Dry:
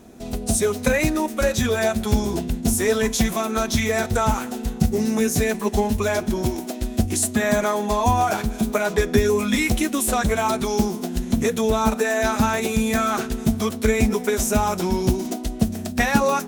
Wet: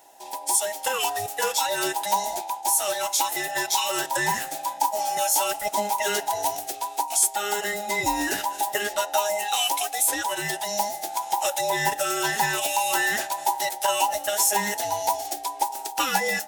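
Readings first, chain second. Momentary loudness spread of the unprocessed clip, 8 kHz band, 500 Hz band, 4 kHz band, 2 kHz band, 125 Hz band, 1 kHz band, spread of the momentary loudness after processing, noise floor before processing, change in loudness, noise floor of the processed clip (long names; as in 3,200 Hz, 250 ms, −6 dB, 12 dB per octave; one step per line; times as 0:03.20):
5 LU, +3.0 dB, −7.5 dB, +3.0 dB, −1.0 dB, −20.0 dB, +1.5 dB, 6 LU, −32 dBFS, −2.5 dB, −38 dBFS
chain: frequency inversion band by band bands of 1,000 Hz
spectral tilt +3 dB per octave
automatic gain control gain up to 4.5 dB
level −7 dB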